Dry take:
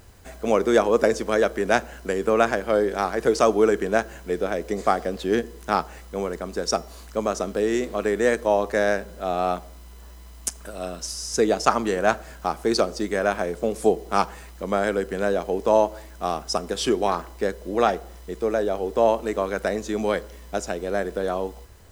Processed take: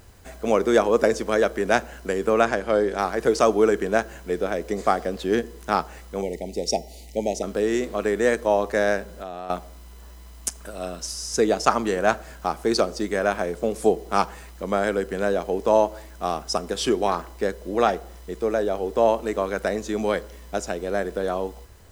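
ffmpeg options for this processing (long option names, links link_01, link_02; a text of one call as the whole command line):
ffmpeg -i in.wav -filter_complex "[0:a]asettb=1/sr,asplit=3[link_01][link_02][link_03];[link_01]atrim=end=2.414[link_04];[link_02]atrim=start=2.41:end=2.99,asetpts=PTS-STARTPTS,afade=type=in:duration=0.004:curve=qsin,afade=type=out:start_time=0.576:duration=0.004:curve=qsin,lowpass=9900[link_05];[link_03]atrim=start=2.986[link_06];[link_04][link_05]acrossfade=duration=0.004:curve1=hsin:curve2=qsin[link_07];[link_07][link_06]acrossfade=duration=0.004:curve1=qsin:curve2=hsin,asplit=3[link_08][link_09][link_10];[link_08]afade=type=out:start_time=6.21:duration=0.02[link_11];[link_09]asuperstop=centerf=1300:order=20:qfactor=1.3,afade=type=in:start_time=6.21:duration=0.02,afade=type=out:start_time=7.42:duration=0.02[link_12];[link_10]afade=type=in:start_time=7.42:duration=0.02[link_13];[link_11][link_12][link_13]amix=inputs=3:normalize=0,asettb=1/sr,asplit=3[link_14][link_15][link_16];[link_14]atrim=end=9.084[link_17];[link_15]atrim=start=9.08:end=9.5,asetpts=PTS-STARTPTS,afade=type=in:duration=0.004:curve=qsin,afade=type=out:start_time=0.416:duration=0.004:curve=qsin,acompressor=threshold=-29dB:ratio=10:attack=3.2:release=140:knee=1:detection=peak[link_18];[link_16]atrim=start=9.496[link_19];[link_17][link_18]acrossfade=duration=0.004:curve1=hsin:curve2=qsin[link_20];[link_20][link_19]acrossfade=duration=0.004:curve1=qsin:curve2=hsin" out.wav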